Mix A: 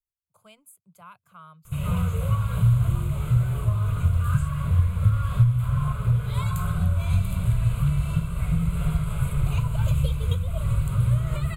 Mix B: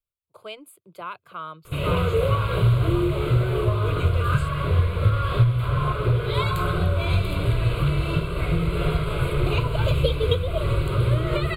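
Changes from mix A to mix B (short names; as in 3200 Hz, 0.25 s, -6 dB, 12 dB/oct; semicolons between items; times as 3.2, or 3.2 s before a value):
speech +4.0 dB; master: remove EQ curve 230 Hz 0 dB, 320 Hz -24 dB, 800 Hz -7 dB, 4400 Hz -12 dB, 6200 Hz +6 dB, 9800 Hz +3 dB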